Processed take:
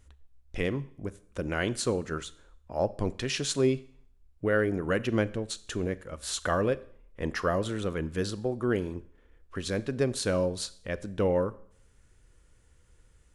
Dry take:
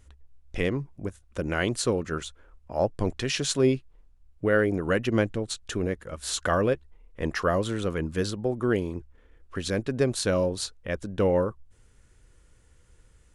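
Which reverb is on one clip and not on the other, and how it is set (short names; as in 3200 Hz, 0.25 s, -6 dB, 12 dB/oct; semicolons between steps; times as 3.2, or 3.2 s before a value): Schroeder reverb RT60 0.59 s, combs from 29 ms, DRR 17 dB; gain -3 dB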